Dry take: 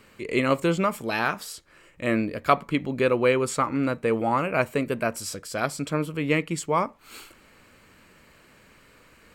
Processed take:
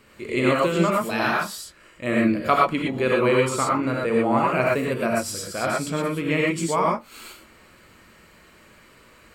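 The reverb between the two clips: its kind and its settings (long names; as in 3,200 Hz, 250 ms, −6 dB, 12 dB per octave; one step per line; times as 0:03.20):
reverb whose tail is shaped and stops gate 140 ms rising, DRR −3 dB
level −1.5 dB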